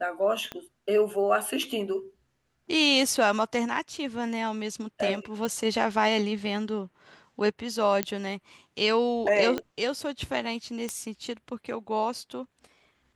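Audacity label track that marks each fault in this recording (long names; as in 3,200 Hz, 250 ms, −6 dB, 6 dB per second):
0.520000	0.520000	click −20 dBFS
3.760000	3.760000	drop-out 3.7 ms
5.450000	5.450000	click
8.030000	8.030000	click −9 dBFS
9.580000	9.580000	click −16 dBFS
10.890000	10.890000	click −17 dBFS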